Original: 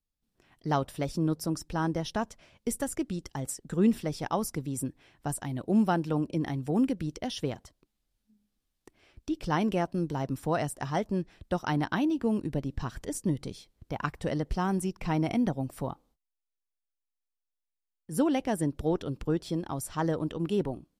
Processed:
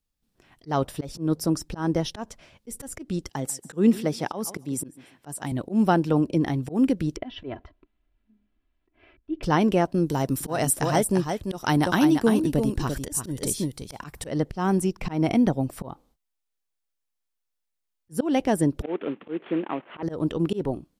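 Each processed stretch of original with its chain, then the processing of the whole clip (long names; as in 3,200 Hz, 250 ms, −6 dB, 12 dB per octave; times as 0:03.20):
0:03.29–0:05.52: high-pass filter 140 Hz + repeating echo 143 ms, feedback 27%, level −20.5 dB
0:07.16–0:09.43: low-pass filter 2,800 Hz 24 dB per octave + comb filter 3 ms, depth 69%
0:10.06–0:14.27: parametric band 12,000 Hz +14 dB 1.6 octaves + single-tap delay 343 ms −6.5 dB
0:18.82–0:20.03: variable-slope delta modulation 16 kbit/s + high-pass filter 220 Hz 24 dB per octave
whole clip: dynamic equaliser 390 Hz, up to +3 dB, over −38 dBFS, Q 1.1; volume swells 164 ms; level +5.5 dB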